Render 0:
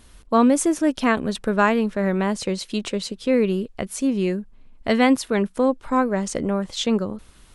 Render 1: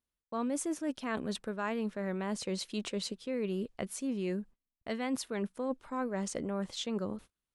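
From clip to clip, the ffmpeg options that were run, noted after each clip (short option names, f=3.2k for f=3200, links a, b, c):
-af "agate=range=-32dB:threshold=-39dB:ratio=16:detection=peak,lowshelf=f=64:g=-10.5,areverse,acompressor=threshold=-25dB:ratio=6,areverse,volume=-6.5dB"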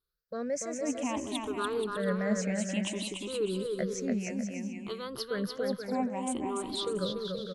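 -filter_complex "[0:a]afftfilt=real='re*pow(10,23/40*sin(2*PI*(0.61*log(max(b,1)*sr/1024/100)/log(2)-(0.59)*(pts-256)/sr)))':imag='im*pow(10,23/40*sin(2*PI*(0.61*log(max(b,1)*sr/1024/100)/log(2)-(0.59)*(pts-256)/sr)))':win_size=1024:overlap=0.75,asplit=2[a][b];[b]aecho=0:1:290|478.5|601|680.7|732.4:0.631|0.398|0.251|0.158|0.1[c];[a][c]amix=inputs=2:normalize=0,volume=-4dB"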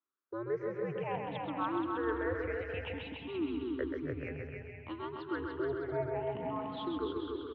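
-filter_complex "[0:a]acrossover=split=400 2500:gain=0.158 1 0.158[a][b][c];[a][b][c]amix=inputs=3:normalize=0,aecho=1:1:132|264|396|528|660:0.562|0.225|0.09|0.036|0.0144,highpass=f=180:t=q:w=0.5412,highpass=f=180:t=q:w=1.307,lowpass=f=3.6k:t=q:w=0.5176,lowpass=f=3.6k:t=q:w=0.7071,lowpass=f=3.6k:t=q:w=1.932,afreqshift=-120"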